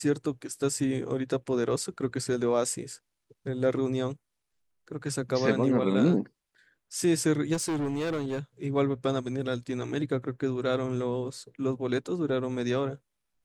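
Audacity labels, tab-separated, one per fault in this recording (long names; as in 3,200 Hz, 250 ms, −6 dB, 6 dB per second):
7.530000	8.390000	clipping −26.5 dBFS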